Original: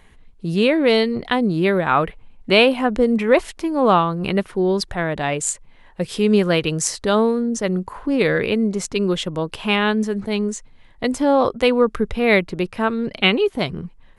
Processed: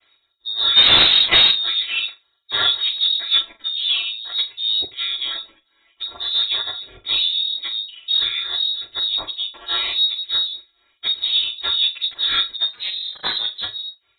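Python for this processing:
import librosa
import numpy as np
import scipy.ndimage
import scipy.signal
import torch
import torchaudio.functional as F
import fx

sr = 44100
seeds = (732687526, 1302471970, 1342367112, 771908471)

p1 = fx.chord_vocoder(x, sr, chord='minor triad', root=57)
p2 = 10.0 ** (-16.0 / 20.0) * np.tanh(p1 / 10.0 ** (-16.0 / 20.0))
p3 = p1 + F.gain(torch.from_numpy(p2), -3.5).numpy()
p4 = fx.leveller(p3, sr, passes=5, at=(0.76, 1.5))
p5 = fx.air_absorb(p4, sr, metres=230.0, at=(3.71, 4.33))
p6 = fx.ring_mod(p5, sr, carrier_hz=110.0, at=(12.69, 13.63))
p7 = p6 + fx.room_flutter(p6, sr, wall_m=6.9, rt60_s=0.23, dry=0)
p8 = fx.chorus_voices(p7, sr, voices=2, hz=0.49, base_ms=11, depth_ms=4.7, mix_pct=65)
p9 = fx.high_shelf(p8, sr, hz=2100.0, db=11.0)
p10 = fx.freq_invert(p9, sr, carrier_hz=4000)
y = F.gain(torch.from_numpy(p10), -4.0).numpy()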